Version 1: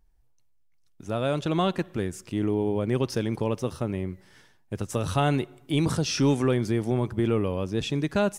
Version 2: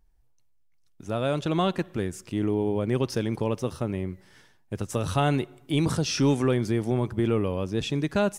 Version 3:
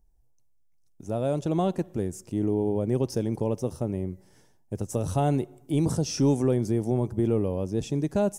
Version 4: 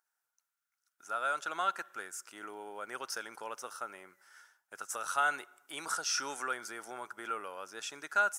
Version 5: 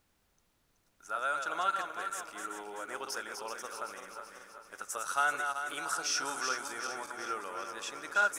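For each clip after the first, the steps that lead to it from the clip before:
no audible change
high-order bell 2.2 kHz -11.5 dB 2.3 oct
resonant high-pass 1.4 kHz, resonance Q 10
backward echo that repeats 191 ms, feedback 71%, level -6 dB; added noise pink -74 dBFS

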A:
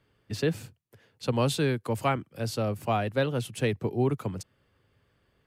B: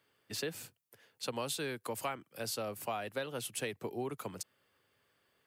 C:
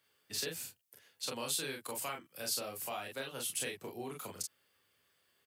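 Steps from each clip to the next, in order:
high-pass 570 Hz 6 dB/octave; treble shelf 8.6 kHz +10.5 dB; compression 4:1, threshold -33 dBFS, peak gain reduction 9 dB; trim -1.5 dB
treble shelf 2.4 kHz +10 dB; on a send: early reflections 30 ms -4 dB, 42 ms -4.5 dB; on the sum: trim -7 dB

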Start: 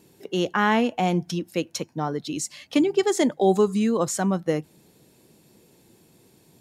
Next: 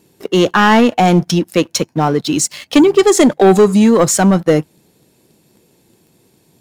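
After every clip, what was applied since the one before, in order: waveshaping leveller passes 2; trim +6.5 dB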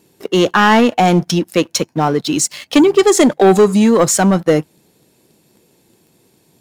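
bass shelf 200 Hz -3.5 dB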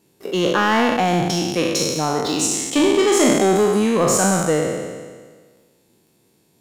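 spectral sustain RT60 1.57 s; trim -8.5 dB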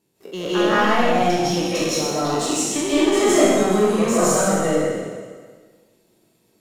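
reverberation RT60 0.70 s, pre-delay 120 ms, DRR -8.5 dB; trim -9.5 dB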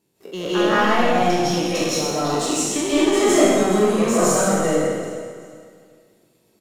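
feedback delay 385 ms, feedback 33%, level -16 dB

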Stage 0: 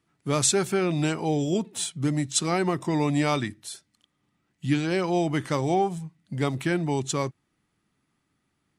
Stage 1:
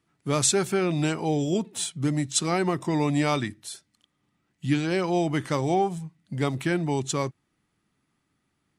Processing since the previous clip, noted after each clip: no audible change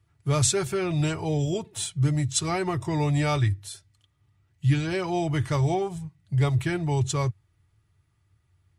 resonant low shelf 140 Hz +12.5 dB, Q 3; comb of notches 260 Hz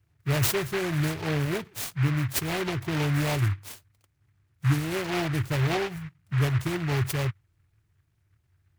high-order bell 1.5 kHz -15.5 dB 1.1 oct; delay time shaken by noise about 1.6 kHz, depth 0.2 ms; trim -1.5 dB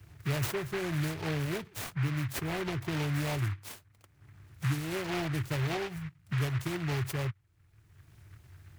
three bands compressed up and down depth 70%; trim -6 dB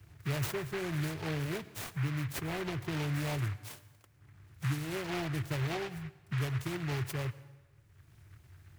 plate-style reverb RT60 1.3 s, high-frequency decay 0.85×, pre-delay 80 ms, DRR 17 dB; trim -2.5 dB

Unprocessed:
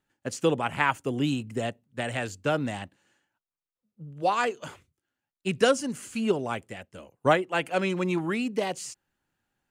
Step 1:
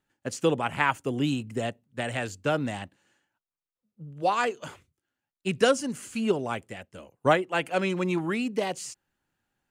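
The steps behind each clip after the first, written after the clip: no audible change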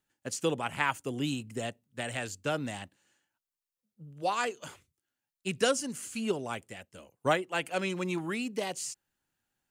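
treble shelf 3.6 kHz +9 dB; trim -6 dB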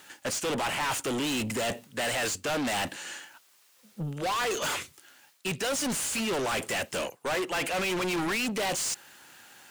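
reverse; compression 12:1, threshold -38 dBFS, peak gain reduction 18 dB; reverse; overdrive pedal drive 37 dB, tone 7.2 kHz, clips at -25.5 dBFS; trim +3 dB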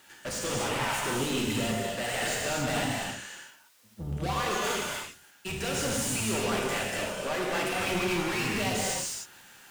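octave divider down 1 oct, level -3 dB; gated-style reverb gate 330 ms flat, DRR -4 dB; trim -5.5 dB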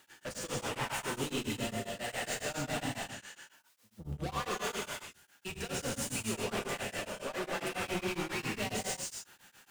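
tremolo of two beating tones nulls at 7.3 Hz; trim -4 dB

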